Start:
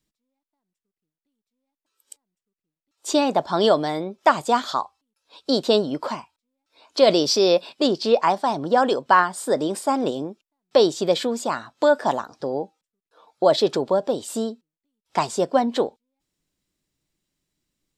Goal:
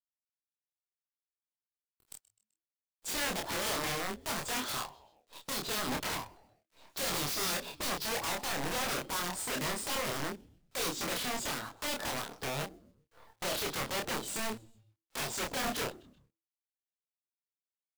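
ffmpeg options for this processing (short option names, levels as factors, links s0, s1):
-filter_complex "[0:a]acrossover=split=3400[s0][s1];[s0]asoftclip=type=tanh:threshold=0.112[s2];[s1]flanger=delay=18:depth=3.6:speed=2.1[s3];[s2][s3]amix=inputs=2:normalize=0,acompressor=threshold=0.0447:ratio=12,acrusher=bits=8:dc=4:mix=0:aa=0.000001,asplit=2[s4][s5];[s5]asplit=3[s6][s7][s8];[s6]adelay=128,afreqshift=-110,volume=0.0794[s9];[s7]adelay=256,afreqshift=-220,volume=0.0367[s10];[s8]adelay=384,afreqshift=-330,volume=0.0168[s11];[s9][s10][s11]amix=inputs=3:normalize=0[s12];[s4][s12]amix=inputs=2:normalize=0,aeval=exprs='(mod(26.6*val(0)+1,2)-1)/26.6':c=same,asplit=2[s13][s14];[s14]adelay=28,volume=0.708[s15];[s13][s15]amix=inputs=2:normalize=0,volume=0.708"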